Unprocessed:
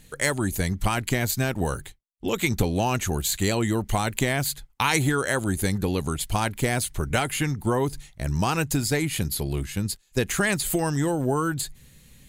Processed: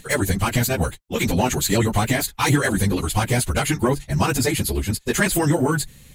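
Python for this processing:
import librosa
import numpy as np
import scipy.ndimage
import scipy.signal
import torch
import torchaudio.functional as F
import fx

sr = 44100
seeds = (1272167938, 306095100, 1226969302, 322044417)

y = fx.fold_sine(x, sr, drive_db=5, ceiling_db=-6.0)
y = fx.stretch_vocoder_free(y, sr, factor=0.5)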